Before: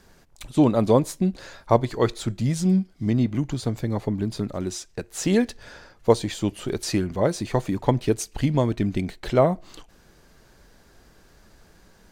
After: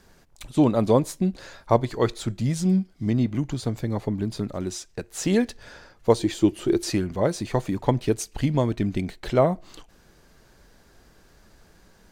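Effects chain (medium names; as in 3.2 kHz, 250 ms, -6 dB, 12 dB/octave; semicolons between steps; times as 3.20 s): 6.19–6.90 s: peaking EQ 340 Hz +14.5 dB 0.28 oct; trim -1 dB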